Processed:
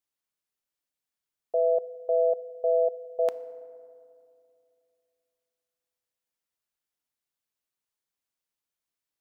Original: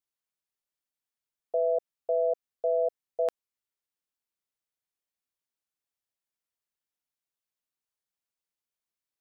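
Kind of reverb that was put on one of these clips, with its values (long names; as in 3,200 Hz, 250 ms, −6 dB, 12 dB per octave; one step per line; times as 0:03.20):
feedback delay network reverb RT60 2.5 s, low-frequency decay 1.35×, high-frequency decay 0.4×, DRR 14.5 dB
level +1.5 dB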